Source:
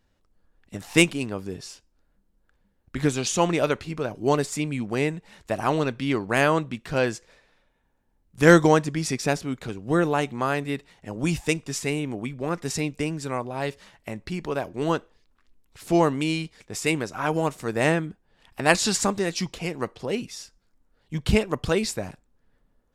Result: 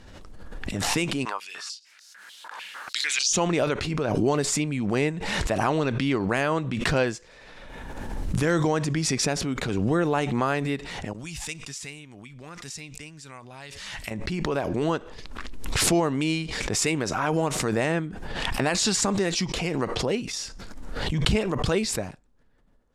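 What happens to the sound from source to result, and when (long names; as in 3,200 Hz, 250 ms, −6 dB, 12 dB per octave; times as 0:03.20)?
0:01.25–0:03.33: high-pass on a step sequencer 6.7 Hz 990–5,500 Hz
0:11.13–0:14.11: guitar amp tone stack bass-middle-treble 5-5-5
0:20.33–0:21.27: envelope flattener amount 50%
whole clip: low-pass filter 9,400 Hz 12 dB per octave; brickwall limiter −13 dBFS; background raised ahead of every attack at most 26 dB per second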